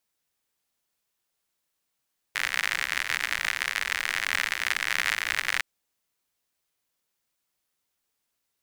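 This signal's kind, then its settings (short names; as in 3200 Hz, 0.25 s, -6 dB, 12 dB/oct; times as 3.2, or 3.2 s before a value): rain from filtered ticks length 3.26 s, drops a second 82, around 1900 Hz, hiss -22 dB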